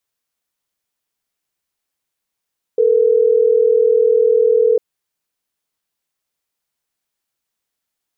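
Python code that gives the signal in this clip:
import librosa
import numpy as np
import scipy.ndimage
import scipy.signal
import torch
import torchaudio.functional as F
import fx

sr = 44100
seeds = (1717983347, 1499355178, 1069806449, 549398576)

y = fx.call_progress(sr, length_s=3.12, kind='ringback tone', level_db=-12.5)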